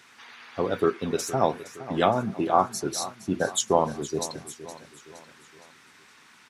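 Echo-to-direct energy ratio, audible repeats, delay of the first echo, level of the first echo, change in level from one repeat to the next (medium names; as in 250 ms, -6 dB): -14.0 dB, 4, 466 ms, -15.0 dB, -6.5 dB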